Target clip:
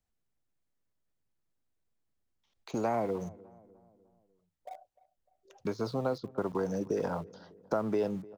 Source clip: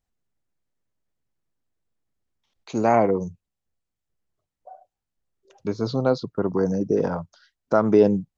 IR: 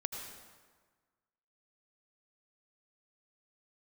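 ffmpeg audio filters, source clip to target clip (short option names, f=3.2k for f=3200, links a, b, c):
-filter_complex "[0:a]acrossover=split=86|570|1300[a][b][c][d];[a]acompressor=threshold=-55dB:ratio=4[e];[b]acompressor=threshold=-34dB:ratio=4[f];[c]acompressor=threshold=-34dB:ratio=4[g];[d]acompressor=threshold=-48dB:ratio=4[h];[e][f][g][h]amix=inputs=4:normalize=0,asplit=2[i][j];[j]aeval=exprs='val(0)*gte(abs(val(0)),0.01)':c=same,volume=-8dB[k];[i][k]amix=inputs=2:normalize=0,asplit=2[l][m];[m]adelay=301,lowpass=f=1.3k:p=1,volume=-20.5dB,asplit=2[n][o];[o]adelay=301,lowpass=f=1.3k:p=1,volume=0.51,asplit=2[p][q];[q]adelay=301,lowpass=f=1.3k:p=1,volume=0.51,asplit=2[r][s];[s]adelay=301,lowpass=f=1.3k:p=1,volume=0.51[t];[l][n][p][r][t]amix=inputs=5:normalize=0,volume=-3.5dB"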